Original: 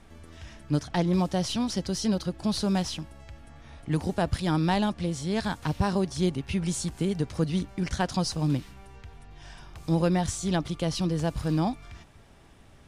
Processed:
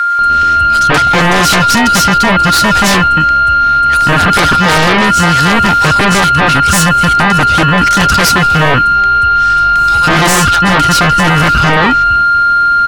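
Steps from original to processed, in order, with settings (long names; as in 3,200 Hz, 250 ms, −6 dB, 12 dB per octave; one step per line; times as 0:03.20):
steady tone 1,400 Hz −29 dBFS
multiband delay without the direct sound highs, lows 190 ms, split 1,200 Hz
sine wavefolder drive 13 dB, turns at −13 dBFS
level +8 dB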